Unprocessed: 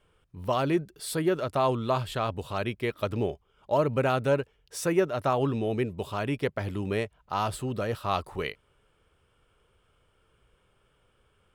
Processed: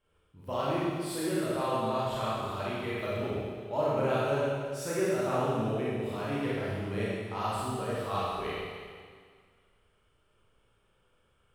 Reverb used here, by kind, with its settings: Schroeder reverb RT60 1.9 s, combs from 28 ms, DRR -8.5 dB; trim -11.5 dB

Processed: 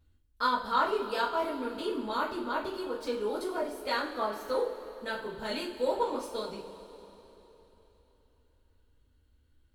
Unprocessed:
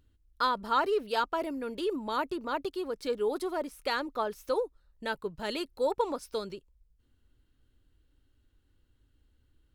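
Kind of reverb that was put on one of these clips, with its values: two-slope reverb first 0.34 s, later 3.6 s, from -18 dB, DRR -7 dB; trim -7.5 dB

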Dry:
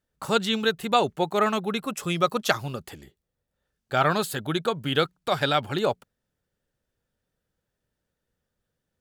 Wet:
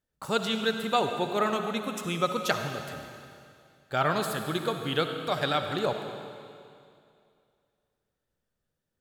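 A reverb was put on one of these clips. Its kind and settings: algorithmic reverb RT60 2.4 s, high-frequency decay 1×, pre-delay 25 ms, DRR 5.5 dB; trim -4.5 dB

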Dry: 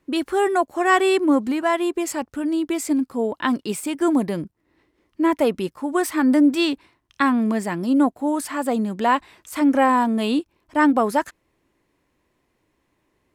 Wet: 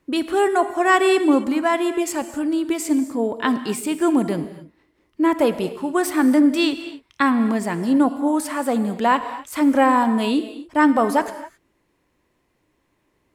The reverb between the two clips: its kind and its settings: gated-style reverb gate 290 ms flat, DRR 10.5 dB; trim +1 dB

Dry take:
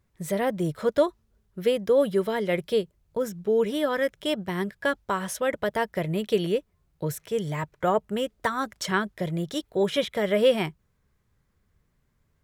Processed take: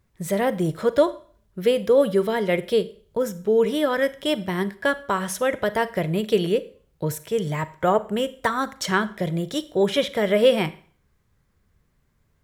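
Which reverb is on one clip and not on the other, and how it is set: Schroeder reverb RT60 0.46 s, combs from 33 ms, DRR 15 dB; trim +3.5 dB

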